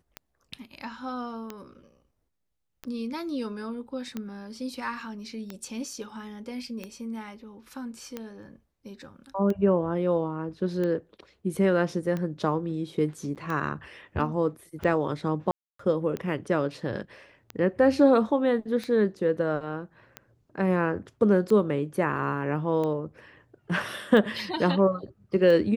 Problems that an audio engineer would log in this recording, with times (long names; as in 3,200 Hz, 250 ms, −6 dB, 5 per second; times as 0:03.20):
scratch tick 45 rpm −20 dBFS
0:13.35–0:13.36: drop-out 8 ms
0:15.51–0:15.79: drop-out 284 ms